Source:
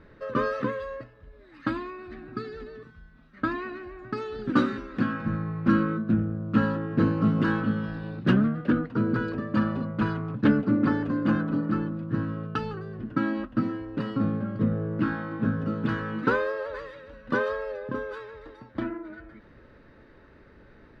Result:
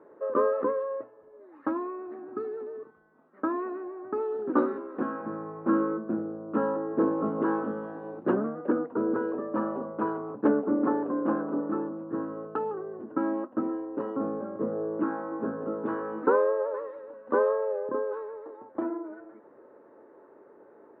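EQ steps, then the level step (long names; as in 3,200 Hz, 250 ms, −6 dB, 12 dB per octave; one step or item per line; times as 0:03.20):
Chebyshev band-pass filter 370–960 Hz, order 2
+5.0 dB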